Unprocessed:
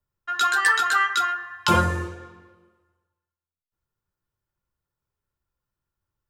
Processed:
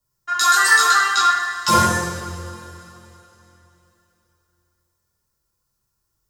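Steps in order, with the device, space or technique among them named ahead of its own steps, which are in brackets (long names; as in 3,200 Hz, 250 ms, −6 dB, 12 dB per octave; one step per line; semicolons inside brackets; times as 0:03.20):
0:00.86–0:01.58: low-pass filter 5,200 Hz 12 dB per octave
over-bright horn tweeter (high shelf with overshoot 4,000 Hz +8.5 dB, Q 1.5; brickwall limiter −12 dBFS, peak gain reduction 9.5 dB)
coupled-rooms reverb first 0.67 s, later 3.4 s, from −16 dB, DRR −4.5 dB
level +1.5 dB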